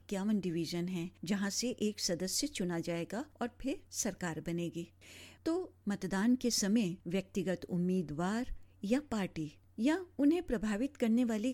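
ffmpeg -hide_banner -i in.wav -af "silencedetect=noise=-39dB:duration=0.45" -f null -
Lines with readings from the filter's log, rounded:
silence_start: 4.84
silence_end: 5.46 | silence_duration: 0.62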